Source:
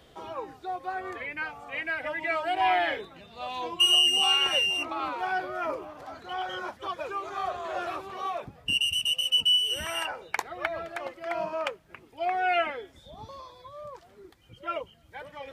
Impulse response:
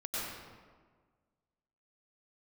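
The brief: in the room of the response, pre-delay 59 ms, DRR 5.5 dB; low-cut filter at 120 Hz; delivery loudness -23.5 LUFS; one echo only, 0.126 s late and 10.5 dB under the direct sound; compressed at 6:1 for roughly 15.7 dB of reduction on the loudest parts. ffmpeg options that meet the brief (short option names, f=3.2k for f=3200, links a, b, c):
-filter_complex "[0:a]highpass=120,acompressor=threshold=-36dB:ratio=6,aecho=1:1:126:0.299,asplit=2[a][b];[1:a]atrim=start_sample=2205,adelay=59[c];[b][c]afir=irnorm=-1:irlink=0,volume=-9.5dB[d];[a][d]amix=inputs=2:normalize=0,volume=14dB"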